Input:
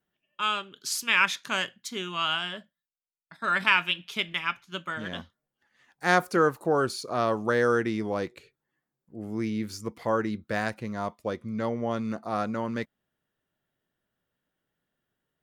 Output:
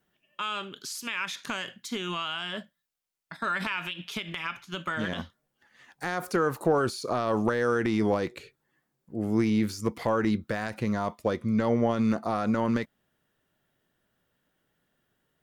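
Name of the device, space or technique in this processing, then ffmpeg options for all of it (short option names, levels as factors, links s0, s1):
de-esser from a sidechain: -filter_complex "[0:a]asplit=2[s0][s1];[s1]highpass=f=5700:p=1,apad=whole_len=680105[s2];[s0][s2]sidechaincompress=threshold=0.00562:ratio=4:attack=0.8:release=51,volume=2.37"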